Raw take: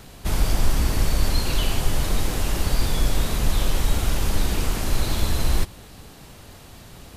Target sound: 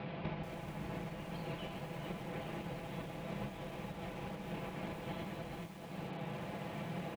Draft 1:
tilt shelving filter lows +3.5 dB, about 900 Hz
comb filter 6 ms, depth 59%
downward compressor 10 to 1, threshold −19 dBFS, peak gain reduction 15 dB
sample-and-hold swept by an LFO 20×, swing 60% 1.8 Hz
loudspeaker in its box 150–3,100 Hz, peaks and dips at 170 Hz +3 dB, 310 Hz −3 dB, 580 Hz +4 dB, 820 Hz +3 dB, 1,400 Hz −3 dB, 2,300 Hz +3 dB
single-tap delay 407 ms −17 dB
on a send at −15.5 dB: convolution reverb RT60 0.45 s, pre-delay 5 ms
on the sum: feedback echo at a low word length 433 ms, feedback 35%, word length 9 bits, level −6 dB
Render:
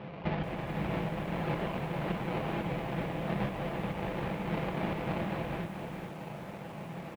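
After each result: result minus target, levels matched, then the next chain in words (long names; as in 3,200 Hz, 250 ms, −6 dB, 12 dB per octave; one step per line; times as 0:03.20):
downward compressor: peak gain reduction −9 dB; sample-and-hold swept by an LFO: distortion +4 dB
tilt shelving filter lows +3.5 dB, about 900 Hz
comb filter 6 ms, depth 59%
downward compressor 10 to 1, threshold −29 dBFS, peak gain reduction 24 dB
sample-and-hold swept by an LFO 20×, swing 60% 1.8 Hz
loudspeaker in its box 150–3,100 Hz, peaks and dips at 170 Hz +3 dB, 310 Hz −3 dB, 580 Hz +4 dB, 820 Hz +3 dB, 1,400 Hz −3 dB, 2,300 Hz +3 dB
single-tap delay 407 ms −17 dB
on a send at −15.5 dB: convolution reverb RT60 0.45 s, pre-delay 5 ms
on the sum: feedback echo at a low word length 433 ms, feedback 35%, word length 9 bits, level −6 dB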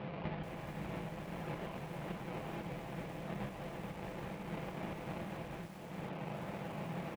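sample-and-hold swept by an LFO: distortion +5 dB
tilt shelving filter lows +3.5 dB, about 900 Hz
comb filter 6 ms, depth 59%
downward compressor 10 to 1, threshold −29 dBFS, peak gain reduction 24 dB
sample-and-hold swept by an LFO 5×, swing 60% 1.8 Hz
loudspeaker in its box 150–3,100 Hz, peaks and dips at 170 Hz +3 dB, 310 Hz −3 dB, 580 Hz +4 dB, 820 Hz +3 dB, 1,400 Hz −3 dB, 2,300 Hz +3 dB
single-tap delay 407 ms −17 dB
on a send at −15.5 dB: convolution reverb RT60 0.45 s, pre-delay 5 ms
on the sum: feedback echo at a low word length 433 ms, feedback 35%, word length 9 bits, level −6 dB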